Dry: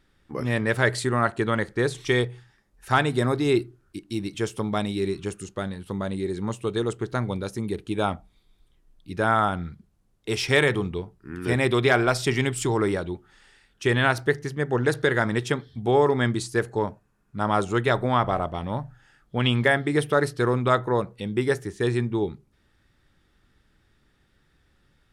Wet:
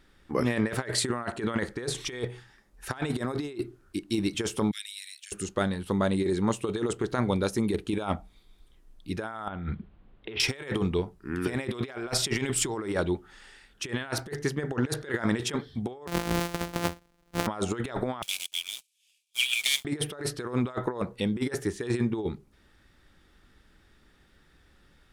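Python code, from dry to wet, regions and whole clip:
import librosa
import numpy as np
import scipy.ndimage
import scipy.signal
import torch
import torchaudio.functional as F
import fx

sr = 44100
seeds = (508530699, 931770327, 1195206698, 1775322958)

y = fx.chain(x, sr, fx.steep_highpass(hz=1700.0, slope=48),
    fx.differentiator(), at=(4.71, 5.32))
y = fx.chain(y, sr, fx.steep_lowpass(hz=3500.0, slope=36),
    fx.over_compress(threshold_db=-38.0, ratio=-1.0), at=(9.48, 10.4))
y = fx.chain(y, sr, fx.sample_sort(block=256),
    fx.low_shelf(hz=71.0, db=-4.5), at=(16.07, 17.47))
y = fx.chain(y, sr, fx.cvsd(bps=64000),
    fx.cheby_ripple_highpass(hz=2300.0, ripple_db=3),
    fx.leveller(passes=3), at=(18.22, 19.85))
y = fx.peak_eq(y, sr, hz=120.0, db=-7.0, octaves=0.64)
y = fx.over_compress(y, sr, threshold_db=-28.0, ratio=-0.5)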